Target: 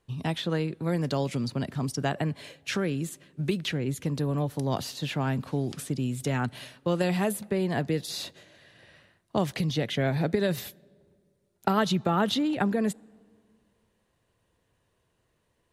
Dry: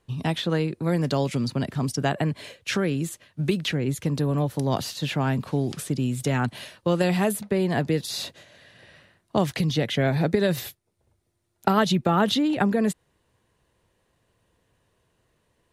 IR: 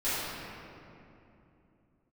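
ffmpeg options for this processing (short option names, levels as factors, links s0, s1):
-filter_complex "[0:a]asplit=2[s0][s1];[1:a]atrim=start_sample=2205,asetrate=74970,aresample=44100[s2];[s1][s2]afir=irnorm=-1:irlink=0,volume=0.0224[s3];[s0][s3]amix=inputs=2:normalize=0,volume=0.631"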